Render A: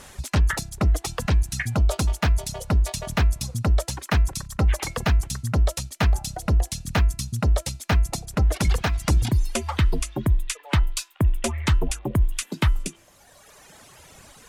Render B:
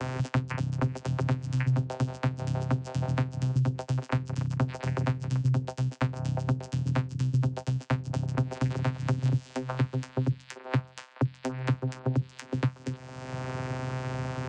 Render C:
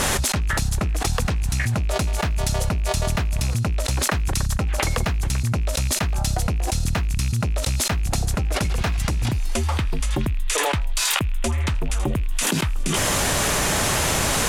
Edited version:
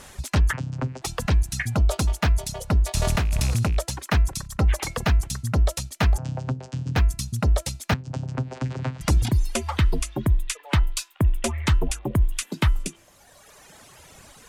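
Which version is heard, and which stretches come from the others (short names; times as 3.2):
A
0.53–1.02 from B
2.95–3.77 from C
6.18–6.96 from B
7.94–9.01 from B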